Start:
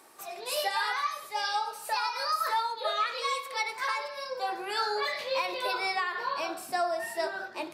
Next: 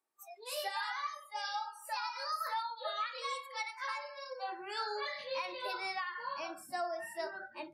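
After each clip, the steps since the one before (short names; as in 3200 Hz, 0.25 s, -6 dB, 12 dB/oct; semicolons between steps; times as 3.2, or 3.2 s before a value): spectral noise reduction 25 dB; gain -8 dB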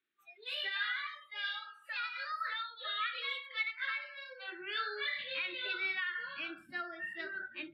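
EQ curve 330 Hz 0 dB, 930 Hz -24 dB, 1400 Hz +3 dB, 3600 Hz +6 dB, 5700 Hz -25 dB; gain +2 dB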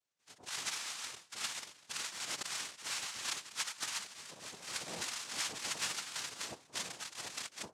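envelope flanger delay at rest 2.1 ms, full sweep at -32 dBFS; noise vocoder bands 2; gain +1 dB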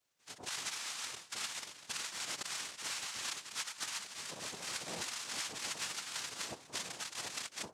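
compressor 3:1, threshold -48 dBFS, peak gain reduction 12 dB; gain +7.5 dB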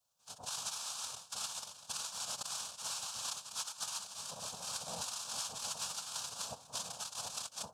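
fixed phaser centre 830 Hz, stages 4; gain +2.5 dB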